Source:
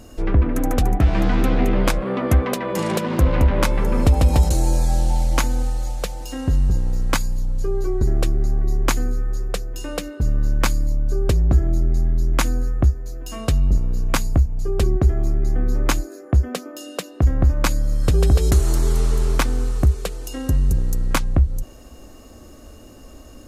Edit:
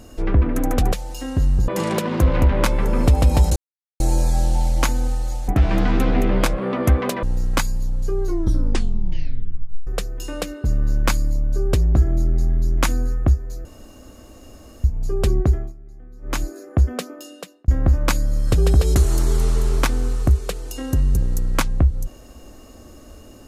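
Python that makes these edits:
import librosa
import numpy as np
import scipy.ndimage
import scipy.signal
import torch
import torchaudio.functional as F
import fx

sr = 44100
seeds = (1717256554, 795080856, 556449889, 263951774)

y = fx.edit(x, sr, fx.swap(start_s=0.92, length_s=1.75, other_s=6.03, other_length_s=0.76),
    fx.insert_silence(at_s=4.55, length_s=0.44),
    fx.tape_stop(start_s=7.79, length_s=1.64),
    fx.room_tone_fill(start_s=13.21, length_s=1.19),
    fx.fade_down_up(start_s=15.03, length_s=1.0, db=-22.0, fade_s=0.26),
    fx.fade_out_span(start_s=16.6, length_s=0.64), tone=tone)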